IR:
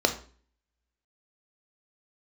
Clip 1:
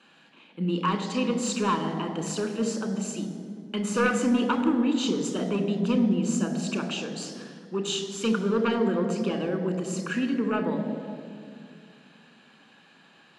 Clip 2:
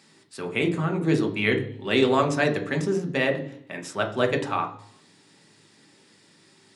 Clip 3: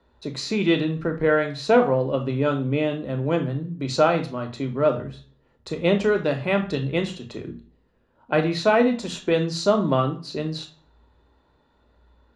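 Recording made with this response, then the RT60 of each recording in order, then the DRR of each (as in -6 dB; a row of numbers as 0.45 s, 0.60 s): 3; 2.3 s, 0.65 s, 0.40 s; 6.0 dB, 4.5 dB, 5.5 dB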